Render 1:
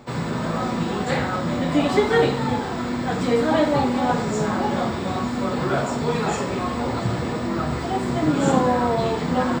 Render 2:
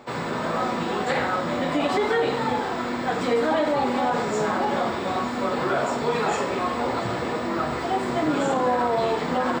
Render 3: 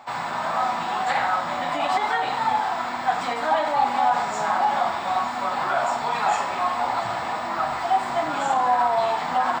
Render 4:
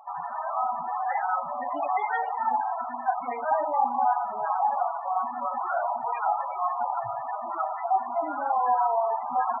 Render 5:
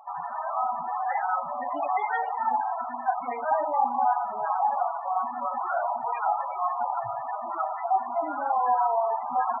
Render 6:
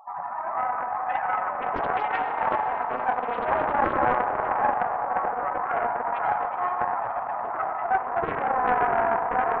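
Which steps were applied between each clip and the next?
tone controls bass -12 dB, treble -5 dB; peak limiter -16 dBFS, peak gain reduction 8 dB; trim +2 dB
resonant low shelf 590 Hz -8.5 dB, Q 3
loudest bins only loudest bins 16; trim -3 dB
no audible change
echo that smears into a reverb 506 ms, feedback 59%, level -9 dB; on a send at -5 dB: reverberation RT60 2.2 s, pre-delay 78 ms; on the sum: loudspeaker Doppler distortion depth 0.62 ms

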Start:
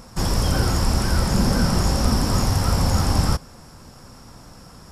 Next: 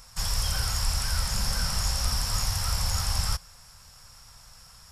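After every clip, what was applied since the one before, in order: amplifier tone stack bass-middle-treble 10-0-10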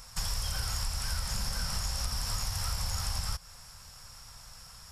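compression, threshold -30 dBFS, peak gain reduction 10 dB; trim +1 dB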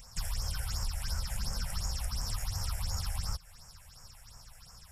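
phase shifter stages 6, 2.8 Hz, lowest notch 280–3800 Hz; trim -1.5 dB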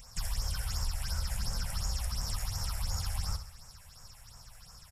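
feedback delay 66 ms, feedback 48%, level -10 dB

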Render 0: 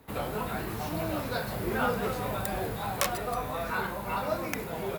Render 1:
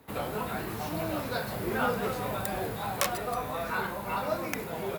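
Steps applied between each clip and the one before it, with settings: high-pass 85 Hz 6 dB/octave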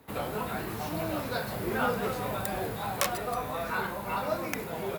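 no audible change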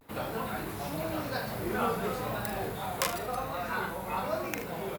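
vibrato 0.93 Hz 99 cents; early reflections 42 ms -10 dB, 78 ms -12.5 dB; trim -2 dB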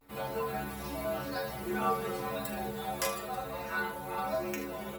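inharmonic resonator 66 Hz, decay 0.61 s, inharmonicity 0.008; trim +8.5 dB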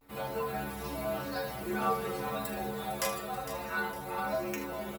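feedback delay 457 ms, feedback 37%, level -12 dB

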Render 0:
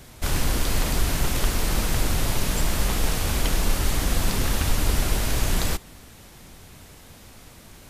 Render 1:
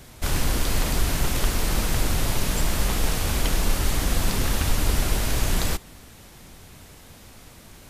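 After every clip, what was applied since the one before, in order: no audible change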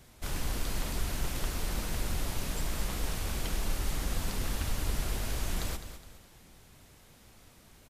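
flange 1.9 Hz, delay 0.8 ms, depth 5.8 ms, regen -76%; on a send: feedback delay 208 ms, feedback 37%, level -11 dB; on the sum: trim -6.5 dB

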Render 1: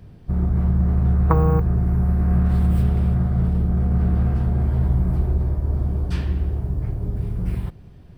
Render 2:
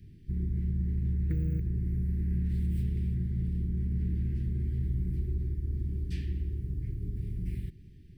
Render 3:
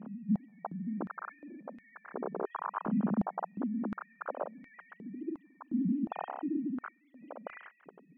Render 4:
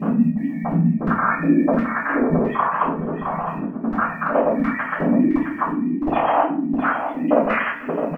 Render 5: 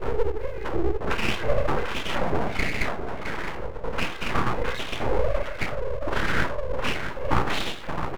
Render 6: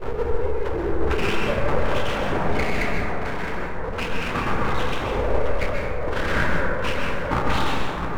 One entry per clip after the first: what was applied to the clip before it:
elliptic band-stop 370–1900 Hz, stop band 40 dB; compression 1.5:1, threshold -27 dBFS, peak gain reduction 5 dB; trim -7 dB
formants replaced by sine waves; peak limiter -26.5 dBFS, peak gain reduction 10.5 dB; step-sequenced high-pass 2.8 Hz 220–1900 Hz; trim -4.5 dB
compressor with a negative ratio -44 dBFS, ratio -1; delay 663 ms -8.5 dB; reverberation RT60 0.45 s, pre-delay 3 ms, DRR -11.5 dB; trim +8.5 dB
full-wave rectifier; trim -3 dB
plate-style reverb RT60 2.3 s, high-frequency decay 0.3×, pre-delay 115 ms, DRR -1.5 dB; trim -1 dB

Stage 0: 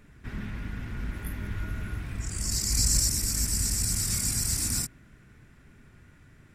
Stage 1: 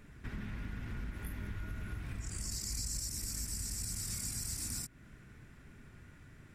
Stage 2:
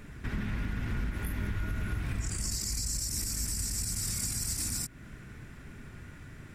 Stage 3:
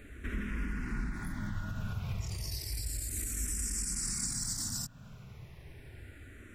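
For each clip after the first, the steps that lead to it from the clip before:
compression 4:1, threshold -37 dBFS, peak gain reduction 14.5 dB; trim -1 dB
peak limiter -31.5 dBFS, peak gain reduction 5.5 dB; trim +8.5 dB
barber-pole phaser -0.32 Hz

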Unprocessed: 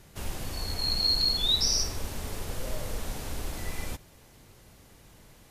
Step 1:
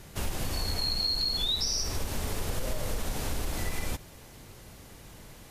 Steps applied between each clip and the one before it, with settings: in parallel at -1 dB: peak limiter -25 dBFS, peak gain reduction 11 dB; on the sum: compression, threshold -26 dBFS, peak gain reduction 8 dB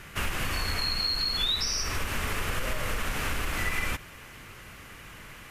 high-order bell 1.8 kHz +11 dB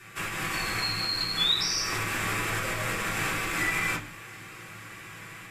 level rider gain up to 4 dB; reverberation RT60 0.35 s, pre-delay 3 ms, DRR -6 dB; trim -5.5 dB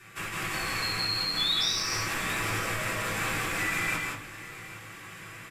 in parallel at -10.5 dB: hard clipper -26 dBFS, distortion -12 dB; on the sum: multi-tap echo 163/184/807 ms -4/-5.5/-17 dB; trim -5 dB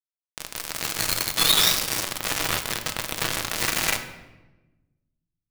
bit crusher 4-bit; simulated room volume 600 m³, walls mixed, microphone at 0.64 m; trim +6.5 dB

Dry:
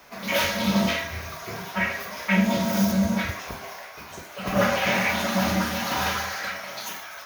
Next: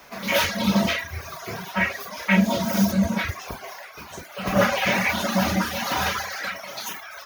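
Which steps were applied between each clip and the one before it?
reverb removal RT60 0.82 s; trim +3 dB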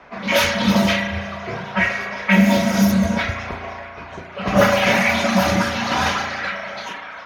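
spring tank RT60 2.1 s, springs 35 ms, chirp 30 ms, DRR 4.5 dB; level-controlled noise filter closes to 2.1 kHz, open at -15 dBFS; trim +4 dB

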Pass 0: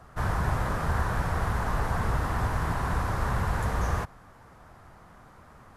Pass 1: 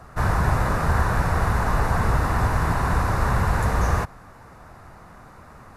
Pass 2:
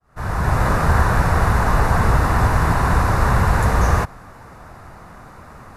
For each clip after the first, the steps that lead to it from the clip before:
band-stop 3.2 kHz, Q 8.5; trim +6.5 dB
fade-in on the opening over 0.67 s; trim +5 dB

